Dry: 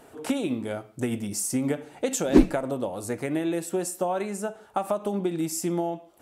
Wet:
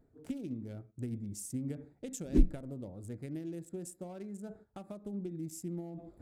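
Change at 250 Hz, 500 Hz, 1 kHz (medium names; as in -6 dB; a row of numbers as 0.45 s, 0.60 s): -12.0 dB, -17.0 dB, -24.5 dB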